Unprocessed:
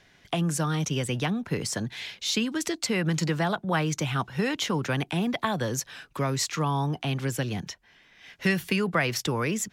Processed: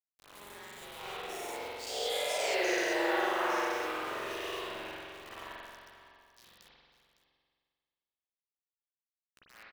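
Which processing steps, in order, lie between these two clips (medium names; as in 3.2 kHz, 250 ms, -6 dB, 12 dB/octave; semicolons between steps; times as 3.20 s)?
every event in the spectrogram widened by 240 ms; Doppler pass-by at 2.45 s, 54 m/s, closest 6 m; bass shelf 120 Hz -7.5 dB; waveshaping leveller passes 2; reverse; compression 10:1, threshold -27 dBFS, peak gain reduction 14.5 dB; reverse; frequency shift +210 Hz; bit crusher 7-bit; on a send: delay 557 ms -14.5 dB; on the sum: spring tank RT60 1.9 s, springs 44 ms, chirp 20 ms, DRR -9 dB; trim -8.5 dB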